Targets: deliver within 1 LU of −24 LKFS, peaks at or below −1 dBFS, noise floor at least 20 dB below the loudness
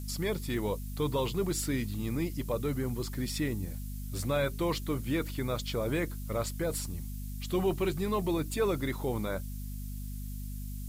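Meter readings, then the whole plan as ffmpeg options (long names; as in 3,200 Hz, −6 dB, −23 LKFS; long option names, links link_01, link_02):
mains hum 50 Hz; hum harmonics up to 250 Hz; level of the hum −36 dBFS; background noise floor −39 dBFS; target noise floor −54 dBFS; integrated loudness −33.5 LKFS; sample peak −19.0 dBFS; target loudness −24.0 LKFS
→ -af "bandreject=frequency=50:width_type=h:width=6,bandreject=frequency=100:width_type=h:width=6,bandreject=frequency=150:width_type=h:width=6,bandreject=frequency=200:width_type=h:width=6,bandreject=frequency=250:width_type=h:width=6"
-af "afftdn=noise_reduction=15:noise_floor=-39"
-af "volume=9.5dB"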